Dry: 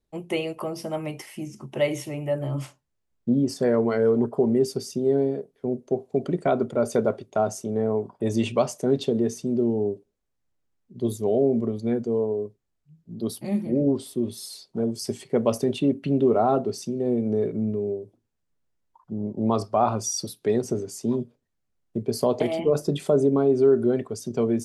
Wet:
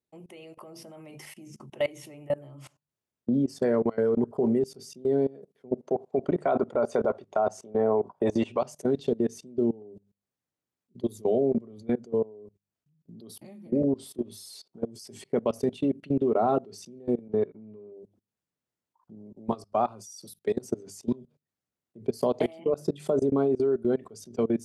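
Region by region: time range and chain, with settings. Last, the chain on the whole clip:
5.72–8.61 LPF 9300 Hz + bell 910 Hz +12 dB 2.3 oct
17.28–17.92 inverse Chebyshev low-pass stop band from 8900 Hz + expander -23 dBFS + dynamic EQ 1200 Hz, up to +6 dB, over -42 dBFS, Q 0.76
19.15–20.72 high shelf 6200 Hz +9.5 dB + upward expander, over -37 dBFS
whole clip: HPF 110 Hz 12 dB/oct; notches 50/100/150/200 Hz; level quantiser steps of 23 dB

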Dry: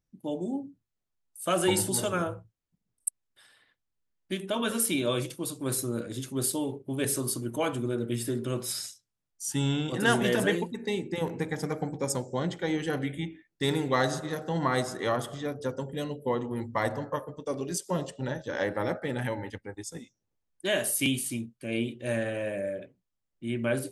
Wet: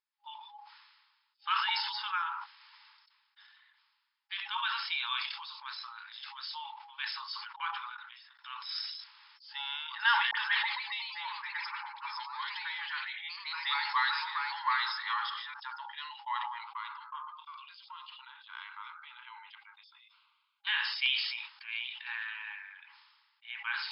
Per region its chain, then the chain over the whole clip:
7.56–8.39 rippled Chebyshev high-pass 310 Hz, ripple 6 dB + gate -34 dBFS, range -24 dB
10.31–15.54 HPF 650 Hz + dispersion highs, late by 48 ms, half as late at 1400 Hz + echoes that change speed 0.165 s, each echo +2 st, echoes 2, each echo -6 dB
16.58–20.67 tone controls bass +9 dB, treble -2 dB + compressor 5:1, threshold -29 dBFS + fixed phaser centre 1200 Hz, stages 8
whole clip: FFT band-pass 820–5300 Hz; sustainer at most 40 dB/s

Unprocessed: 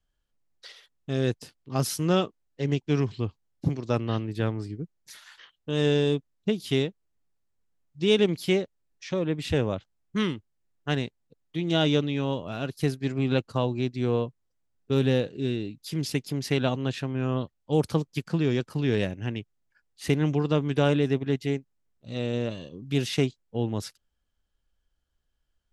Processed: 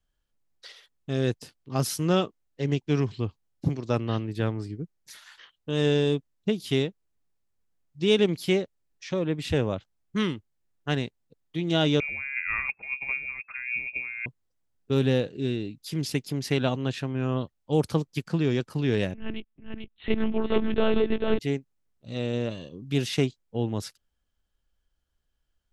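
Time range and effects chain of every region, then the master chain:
12–14.26 negative-ratio compressor -33 dBFS + inverted band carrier 2600 Hz
19.14–21.39 echo 0.442 s -4.5 dB + monotone LPC vocoder at 8 kHz 220 Hz
whole clip: dry

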